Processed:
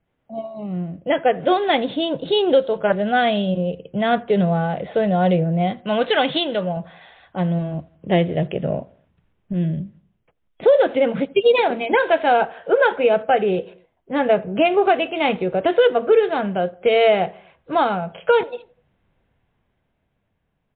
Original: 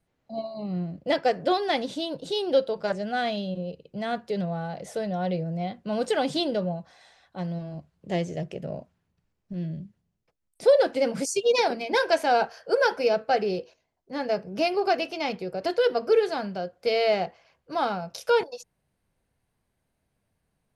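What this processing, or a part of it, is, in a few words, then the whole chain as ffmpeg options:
low-bitrate web radio: -filter_complex "[0:a]asettb=1/sr,asplit=3[s0][s1][s2];[s0]atrim=end=5.804[s3];[s1]atrim=start=5.8:end=6.77,asetpts=PTS-STARTPTS,afade=t=in:d=0.004:c=qsin,afade=t=out:st=0.966:d=0.004:c=qsin,tiltshelf=f=870:g=-6[s4];[s2]atrim=start=6.766[s5];[s3][s4]acrossfade=d=0.004:c1=hsin:c2=qsin[s6];[s6][s5]acrossfade=d=0.004:c1=qsin:c2=hsin,asplit=2[s7][s8];[s8]adelay=83,lowpass=f=1600:p=1,volume=0.0708,asplit=2[s9][s10];[s10]adelay=83,lowpass=f=1600:p=1,volume=0.51,asplit=2[s11][s12];[s12]adelay=83,lowpass=f=1600:p=1,volume=0.51[s13];[s7][s9][s11][s13]amix=inputs=4:normalize=0,dynaudnorm=f=190:g=17:m=2.66,alimiter=limit=0.335:level=0:latency=1:release=447,volume=1.5" -ar 8000 -c:a libmp3lame -b:a 32k

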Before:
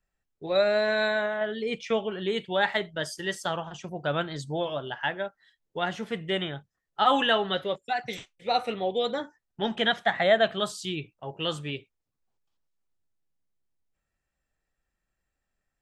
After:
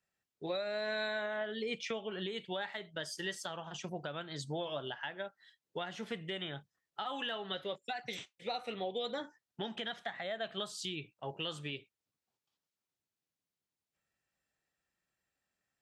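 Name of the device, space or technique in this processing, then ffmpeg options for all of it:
broadcast voice chain: -af "highpass=110,deesser=0.75,acompressor=threshold=0.0282:ratio=5,equalizer=f=4100:t=o:w=2.1:g=4.5,alimiter=limit=0.0668:level=0:latency=1:release=364,volume=0.668"

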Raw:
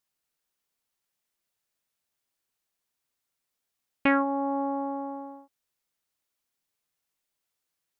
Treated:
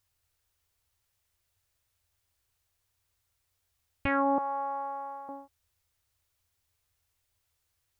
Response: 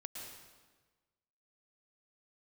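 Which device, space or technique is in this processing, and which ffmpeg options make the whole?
car stereo with a boomy subwoofer: -filter_complex "[0:a]lowshelf=f=130:t=q:w=3:g=13.5,alimiter=limit=0.0794:level=0:latency=1,asettb=1/sr,asplit=3[s0][s1][s2];[s0]atrim=end=4.384[s3];[s1]atrim=start=4.38:end=5.29,asetpts=PTS-STARTPTS,afade=t=in:d=0.004:c=qsin,afade=t=out:st=0.906:d=0.004:c=qsin,highpass=1000[s4];[s2]atrim=start=5.286[s5];[s3][s4]acrossfade=d=0.004:c1=hsin:c2=qsin[s6];[s6][s5]acrossfade=d=0.004:c1=qsin:c2=hsin,volume=1.68"

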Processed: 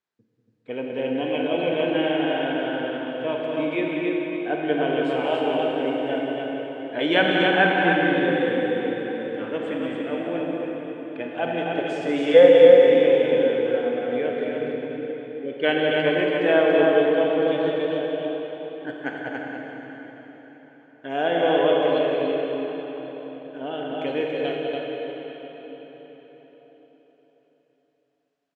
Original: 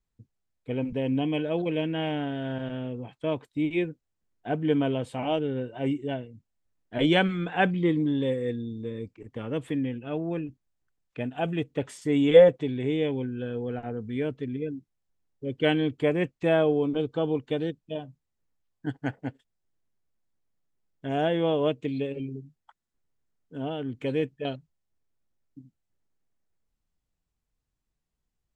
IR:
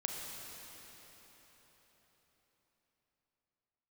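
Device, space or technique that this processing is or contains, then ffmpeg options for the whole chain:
station announcement: -filter_complex "[0:a]highpass=350,lowpass=4600,equalizer=f=1600:t=o:w=0.26:g=5,aecho=1:1:192.4|282.8:0.398|0.708[s0];[1:a]atrim=start_sample=2205[s1];[s0][s1]afir=irnorm=-1:irlink=0,volume=1.5"

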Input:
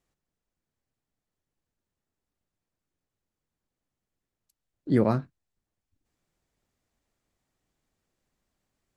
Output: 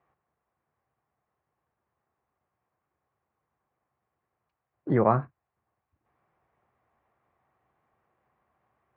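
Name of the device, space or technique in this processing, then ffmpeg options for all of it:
bass amplifier: -af "acompressor=threshold=0.0631:ratio=4,highpass=f=72:w=0.5412,highpass=f=72:w=1.3066,equalizer=f=93:t=q:w=4:g=-6,equalizer=f=180:t=q:w=4:g=-7,equalizer=f=270:t=q:w=4:g=-9,equalizer=f=760:t=q:w=4:g=7,equalizer=f=1100:t=q:w=4:g=9,lowpass=f=2200:w=0.5412,lowpass=f=2200:w=1.3066,volume=2.37"

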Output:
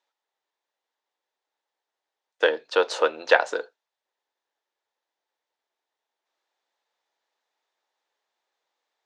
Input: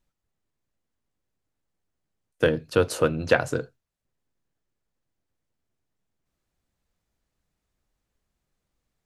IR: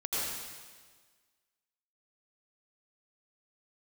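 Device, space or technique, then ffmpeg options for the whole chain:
phone speaker on a table: -af "highpass=f=430:w=0.5412,highpass=f=430:w=1.3066,equalizer=f=880:t=q:w=4:g=9,equalizer=f=1800:t=q:w=4:g=4,equalizer=f=3600:t=q:w=4:g=6,lowpass=f=6600:w=0.5412,lowpass=f=6600:w=1.3066,volume=1.19"

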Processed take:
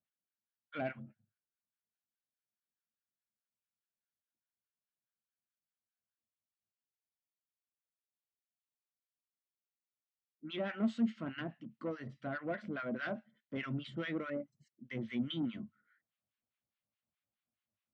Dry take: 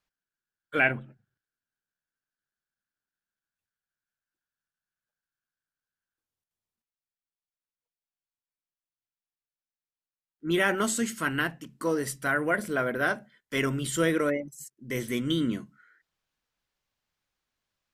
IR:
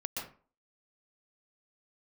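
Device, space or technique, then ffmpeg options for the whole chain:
guitar amplifier with harmonic tremolo: -filter_complex "[0:a]asettb=1/sr,asplit=3[s0][s1][s2];[s0]atrim=end=12.964[s3];[s1]atrim=start=12.96:end=13.57,asetpts=PTS-STARTPTS,afade=t=in:d=0.004:c=qsin,afade=t=out:st=0.606:d=0.004:c=qsin,highshelf=f=3000:g=9.5[s4];[s2]atrim=start=13.566[s5];[s3][s4]acrossfade=d=0.004:c1=hsin:c2=qsin[s6];[s6][s5]acrossfade=d=0.004:c1=qsin:c2=hsin,acrossover=split=990[s7][s8];[s7]aeval=exprs='val(0)*(1-1/2+1/2*cos(2*PI*4.8*n/s))':c=same[s9];[s8]aeval=exprs='val(0)*(1-1/2-1/2*cos(2*PI*4.8*n/s))':c=same[s10];[s9][s10]amix=inputs=2:normalize=0,asoftclip=type=tanh:threshold=0.0596,highpass=94,equalizer=f=100:t=q:w=4:g=9,equalizer=f=220:t=q:w=4:g=9,equalizer=f=430:t=q:w=4:g=-7,equalizer=f=620:t=q:w=4:g=4,equalizer=f=940:t=q:w=4:g=-5,equalizer=f=1600:t=q:w=4:g=-4,lowpass=f=3600:w=0.5412,lowpass=f=3600:w=1.3066,volume=0.531"

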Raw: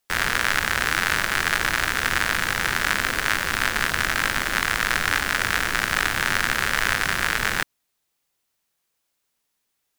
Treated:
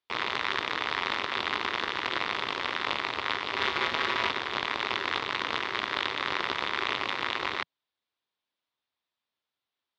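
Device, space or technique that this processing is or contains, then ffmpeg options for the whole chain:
ring modulator pedal into a guitar cabinet: -filter_complex "[0:a]asettb=1/sr,asplit=3[s0][s1][s2];[s0]atrim=end=3.554[s3];[s1]atrim=start=3.55:end=4.31,asetpts=PTS-STARTPTS,afade=t=in:d=0.004:c=qsin,afade=t=out:st=0.756:d=0.004:c=qsin,aecho=1:1:6.6:0.97,atrim=end_sample=33516[s4];[s2]atrim=start=4.306[s5];[s3][s4]acrossfade=d=0.004:c1=hsin:c2=qsin[s6];[s6][s5]acrossfade=d=0.004:c1=qsin:c2=hsin,aeval=exprs='val(0)*sgn(sin(2*PI*390*n/s))':c=same,highpass=91,equalizer=f=170:t=q:w=4:g=-7,equalizer=f=1000:t=q:w=4:g=5,equalizer=f=3600:t=q:w=4:g=6,lowpass=f=4400:w=0.5412,lowpass=f=4400:w=1.3066,volume=0.355"

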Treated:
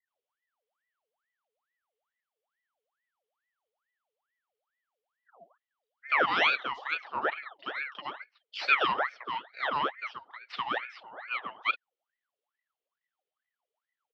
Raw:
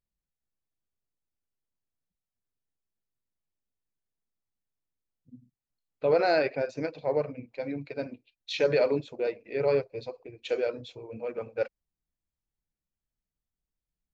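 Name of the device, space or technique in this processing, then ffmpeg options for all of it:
voice changer toy: -filter_complex "[0:a]acrossover=split=170|4400[s0][s1][s2];[s2]adelay=50[s3];[s1]adelay=80[s4];[s0][s4][s3]amix=inputs=3:normalize=0,aeval=exprs='val(0)*sin(2*PI*1200*n/s+1200*0.65/2.3*sin(2*PI*2.3*n/s))':c=same,highpass=510,equalizer=f=1000:t=q:w=4:g=-4,equalizer=f=1600:t=q:w=4:g=-4,equalizer=f=3100:t=q:w=4:g=7,lowpass=f=4400:w=0.5412,lowpass=f=4400:w=1.3066,volume=1.5"

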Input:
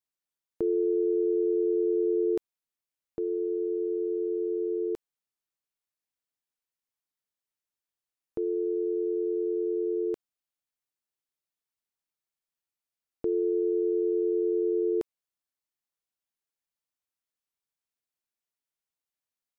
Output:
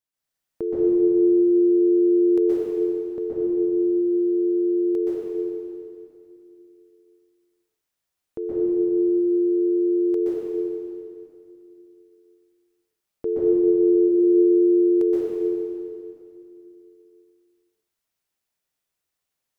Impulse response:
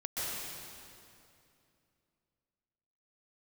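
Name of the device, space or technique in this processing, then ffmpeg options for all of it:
stairwell: -filter_complex "[0:a]asettb=1/sr,asplit=3[s0][s1][s2];[s0]atrim=end=13.254[s3];[s1]atrim=start=13.25:end=13.95,asetpts=PTS-STARTPTS,afade=t=in:d=0.004:c=qsin,afade=t=out:st=0.696:d=0.004:c=qsin,aecho=1:1:2:0.73,atrim=end_sample=30870[s4];[s2]atrim=start=13.946[s5];[s3][s4]acrossfade=d=0.004:c1=hsin:c2=qsin[s6];[s6][s5]acrossfade=d=0.004:c1=qsin:c2=hsin[s7];[1:a]atrim=start_sample=2205[s8];[s7][s8]afir=irnorm=-1:irlink=0,volume=1.68"

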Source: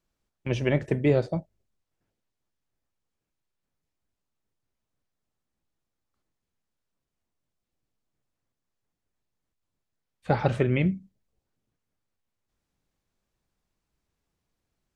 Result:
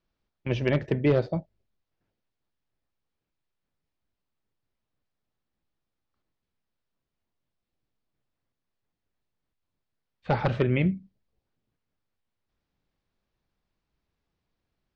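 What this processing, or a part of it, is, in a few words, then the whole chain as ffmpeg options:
synthesiser wavefolder: -af "aeval=exprs='0.224*(abs(mod(val(0)/0.224+3,4)-2)-1)':c=same,lowpass=f=5000:w=0.5412,lowpass=f=5000:w=1.3066"

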